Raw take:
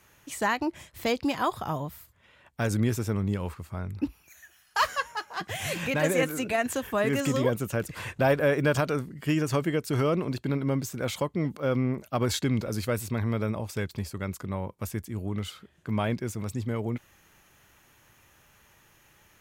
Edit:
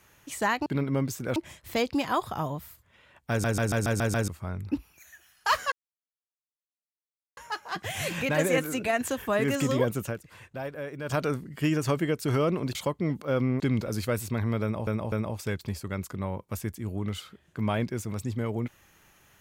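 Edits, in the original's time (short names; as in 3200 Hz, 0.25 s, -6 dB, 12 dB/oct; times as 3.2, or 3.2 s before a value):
2.6 stutter in place 0.14 s, 7 plays
5.02 insert silence 1.65 s
7.69–8.84 dip -13 dB, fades 0.15 s
10.4–11.1 move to 0.66
11.95–12.4 cut
13.42–13.67 loop, 3 plays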